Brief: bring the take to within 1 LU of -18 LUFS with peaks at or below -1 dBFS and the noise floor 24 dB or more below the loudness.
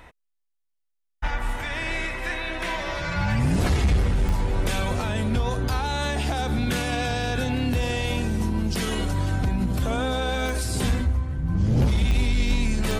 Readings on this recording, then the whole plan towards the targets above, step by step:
clicks found 4; loudness -25.5 LUFS; peak level -10.5 dBFS; loudness target -18.0 LUFS
-> de-click; trim +7.5 dB

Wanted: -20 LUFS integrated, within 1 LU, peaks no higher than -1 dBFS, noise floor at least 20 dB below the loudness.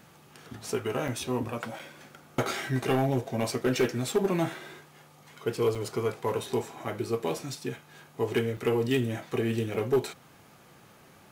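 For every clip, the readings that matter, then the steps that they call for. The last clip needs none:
clipped samples 0.4%; clipping level -18.0 dBFS; dropouts 5; longest dropout 5.1 ms; loudness -30.0 LUFS; peak level -18.0 dBFS; loudness target -20.0 LUFS
-> clip repair -18 dBFS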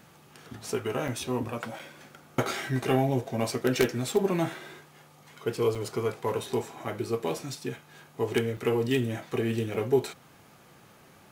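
clipped samples 0.0%; dropouts 5; longest dropout 5.1 ms
-> interpolate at 1.08/1.79/5.75/8.57/9.74 s, 5.1 ms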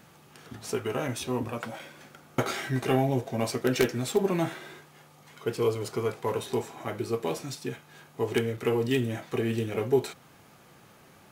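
dropouts 0; loudness -29.5 LUFS; peak level -9.0 dBFS; loudness target -20.0 LUFS
-> trim +9.5 dB; peak limiter -1 dBFS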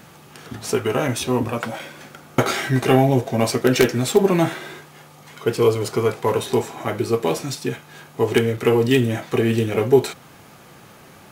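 loudness -20.5 LUFS; peak level -1.0 dBFS; noise floor -46 dBFS

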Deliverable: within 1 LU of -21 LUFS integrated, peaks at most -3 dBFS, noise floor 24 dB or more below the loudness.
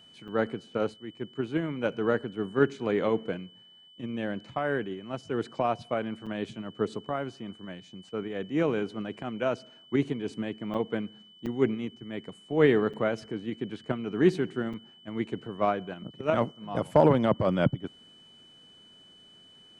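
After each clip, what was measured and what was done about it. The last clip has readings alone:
dropouts 6; longest dropout 6.2 ms; steady tone 3 kHz; tone level -53 dBFS; loudness -30.0 LUFS; peak level -8.5 dBFS; loudness target -21.0 LUFS
-> interpolate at 0.28/6.26/10.74/11.46/12.93/14.73 s, 6.2 ms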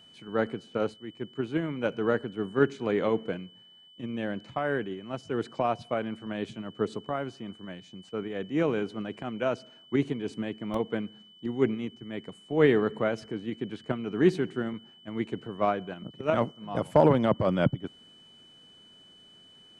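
dropouts 0; steady tone 3 kHz; tone level -53 dBFS
-> band-stop 3 kHz, Q 30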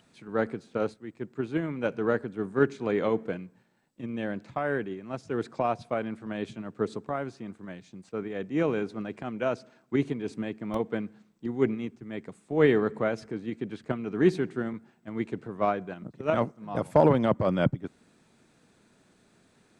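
steady tone not found; loudness -30.0 LUFS; peak level -8.5 dBFS; loudness target -21.0 LUFS
-> trim +9 dB; peak limiter -3 dBFS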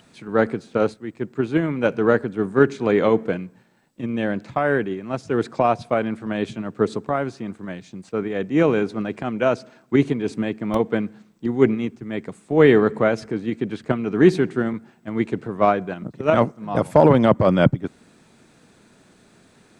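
loudness -21.5 LUFS; peak level -3.0 dBFS; noise floor -55 dBFS

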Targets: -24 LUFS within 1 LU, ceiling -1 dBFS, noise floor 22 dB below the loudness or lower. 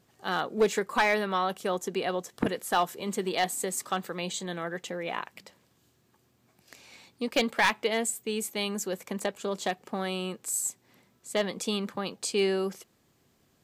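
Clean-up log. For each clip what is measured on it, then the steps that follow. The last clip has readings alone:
clipped samples 0.2%; clipping level -16.5 dBFS; loudness -30.0 LUFS; peak level -16.5 dBFS; loudness target -24.0 LUFS
-> clip repair -16.5 dBFS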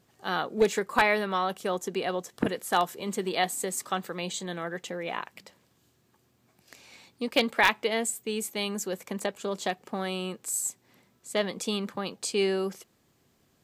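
clipped samples 0.0%; loudness -29.5 LUFS; peak level -7.5 dBFS; loudness target -24.0 LUFS
-> trim +5.5 dB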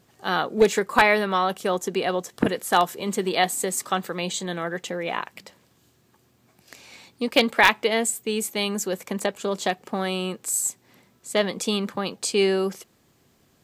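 loudness -24.0 LUFS; peak level -2.0 dBFS; noise floor -62 dBFS

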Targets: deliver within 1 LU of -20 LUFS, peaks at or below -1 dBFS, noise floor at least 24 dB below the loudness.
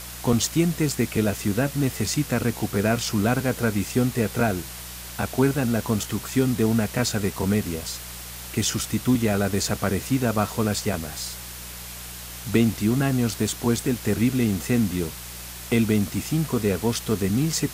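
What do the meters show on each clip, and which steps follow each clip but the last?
hum 60 Hz; highest harmonic 180 Hz; hum level -42 dBFS; noise floor -38 dBFS; noise floor target -48 dBFS; loudness -24.0 LUFS; peak level -6.0 dBFS; loudness target -20.0 LUFS
-> de-hum 60 Hz, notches 3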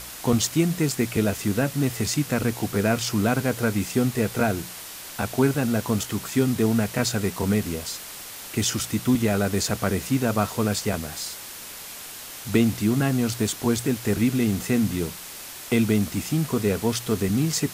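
hum not found; noise floor -39 dBFS; noise floor target -48 dBFS
-> noise reduction 9 dB, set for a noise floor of -39 dBFS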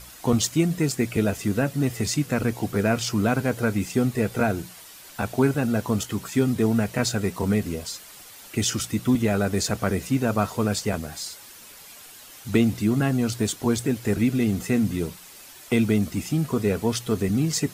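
noise floor -46 dBFS; noise floor target -49 dBFS
-> noise reduction 6 dB, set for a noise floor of -46 dBFS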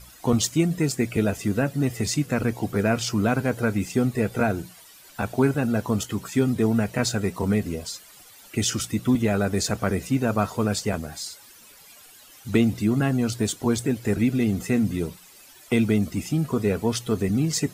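noise floor -49 dBFS; loudness -24.5 LUFS; peak level -6.5 dBFS; loudness target -20.0 LUFS
-> trim +4.5 dB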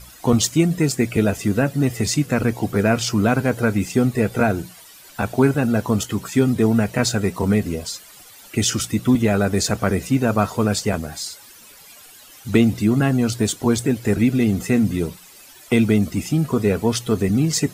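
loudness -20.0 LUFS; peak level -2.0 dBFS; noise floor -45 dBFS

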